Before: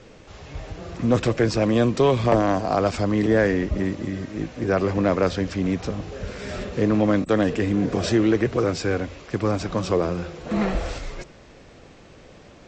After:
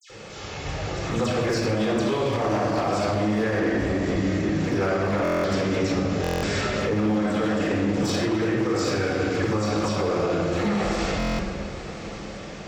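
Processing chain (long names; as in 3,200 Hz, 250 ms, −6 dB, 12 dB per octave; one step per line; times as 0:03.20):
low-shelf EQ 500 Hz −4.5 dB
mains-hum notches 60/120/180/240/300/360/420 Hz
rectangular room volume 2,100 cubic metres, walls mixed, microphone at 4.1 metres
downward compressor 3 to 1, threshold −22 dBFS, peak gain reduction 10 dB
high-shelf EQ 5,700 Hz +5 dB
gain into a clipping stage and back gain 18.5 dB
high-pass filter 88 Hz 6 dB per octave
all-pass dispersion lows, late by 100 ms, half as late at 2,700 Hz
brickwall limiter −19 dBFS, peak gain reduction 6.5 dB
on a send: feedback delay with all-pass diffusion 1,039 ms, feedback 45%, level −14.5 dB
on the sum: buffer that repeats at 0:05.23/0:06.22/0:11.18, samples 1,024, times 8
level +3.5 dB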